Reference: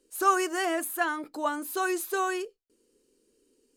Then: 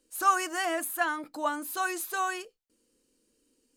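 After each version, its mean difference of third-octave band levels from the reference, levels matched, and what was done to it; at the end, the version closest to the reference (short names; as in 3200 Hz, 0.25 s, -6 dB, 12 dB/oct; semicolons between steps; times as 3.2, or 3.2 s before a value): 1.5 dB: bell 400 Hz -14.5 dB 0.31 oct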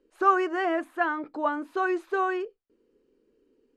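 6.5 dB: LPF 2000 Hz 12 dB/oct; gain +2.5 dB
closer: first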